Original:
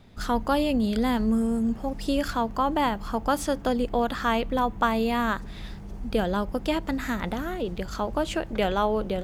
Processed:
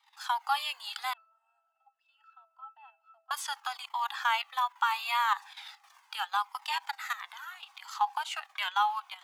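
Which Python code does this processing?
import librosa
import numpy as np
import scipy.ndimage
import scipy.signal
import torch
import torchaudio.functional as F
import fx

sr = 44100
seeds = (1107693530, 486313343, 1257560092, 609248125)

y = fx.level_steps(x, sr, step_db=13)
y = scipy.signal.sosfilt(scipy.signal.cheby1(6, 3, 790.0, 'highpass', fs=sr, output='sos'), y)
y = fx.octave_resonator(y, sr, note='E', decay_s=0.4, at=(1.13, 3.31))
y = fx.comb_cascade(y, sr, direction='falling', hz=0.76)
y = F.gain(torch.from_numpy(y), 9.0).numpy()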